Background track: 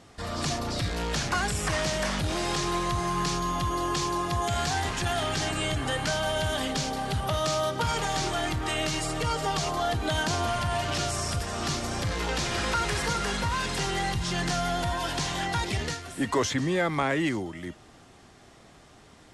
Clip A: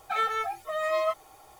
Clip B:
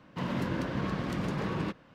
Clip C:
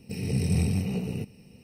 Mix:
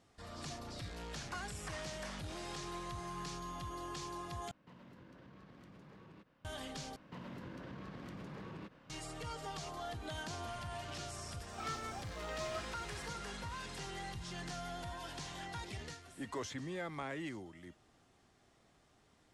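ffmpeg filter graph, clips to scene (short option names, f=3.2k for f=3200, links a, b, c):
-filter_complex "[2:a]asplit=2[a][b];[0:a]volume=-16dB[c];[a]acompressor=threshold=-41dB:ratio=6:attack=3.2:release=140:knee=1:detection=peak[d];[b]acompressor=threshold=-41dB:ratio=6:attack=3.2:release=140:knee=1:detection=peak[e];[c]asplit=3[f][g][h];[f]atrim=end=4.514[i];[d]atrim=end=1.94,asetpts=PTS-STARTPTS,volume=-13.5dB[j];[g]atrim=start=6.446:end=6.964[k];[e]atrim=end=1.94,asetpts=PTS-STARTPTS,volume=-4dB[l];[h]atrim=start=8.896[m];[1:a]atrim=end=1.59,asetpts=PTS-STARTPTS,volume=-16dB,afade=t=in:d=0.004:c=hsin,afade=t=out:st=1.586:d=0.004:c=hsin,adelay=11480[n];[i][j]acrossfade=d=0.004:c1=hsin:c2=hsin[o];[o][k]acrossfade=d=0.004:c1=hsin:c2=hsin[p];[p][l]acrossfade=d=0.004:c1=hsin:c2=hsin[q];[q][m]acrossfade=d=0.004:c1=hsin:c2=hsin[r];[r][n]amix=inputs=2:normalize=0"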